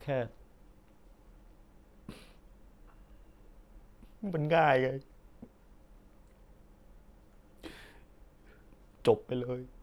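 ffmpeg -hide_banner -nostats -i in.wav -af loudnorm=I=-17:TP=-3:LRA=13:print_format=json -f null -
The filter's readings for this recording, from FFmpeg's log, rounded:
"input_i" : "-31.4",
"input_tp" : "-12.5",
"input_lra" : "22.7",
"input_thresh" : "-47.4",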